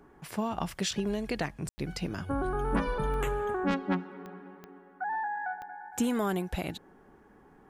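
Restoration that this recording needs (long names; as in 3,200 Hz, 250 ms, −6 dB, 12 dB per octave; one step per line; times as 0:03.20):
click removal
ambience match 0:01.69–0:01.78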